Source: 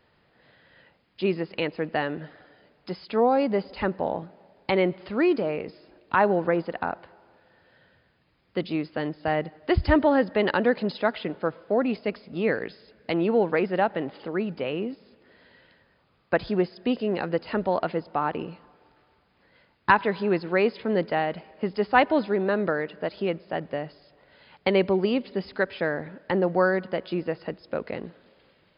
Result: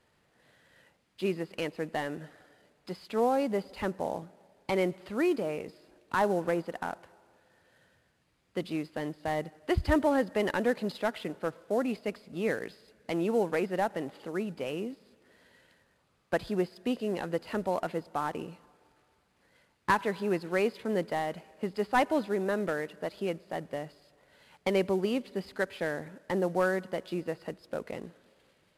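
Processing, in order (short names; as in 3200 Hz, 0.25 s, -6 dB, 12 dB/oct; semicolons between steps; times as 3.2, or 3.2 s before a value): CVSD 64 kbps; gain -5.5 dB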